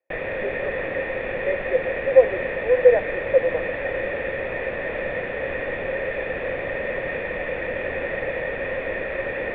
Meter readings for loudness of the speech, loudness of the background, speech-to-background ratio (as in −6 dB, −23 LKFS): −21.0 LKFS, −27.0 LKFS, 6.0 dB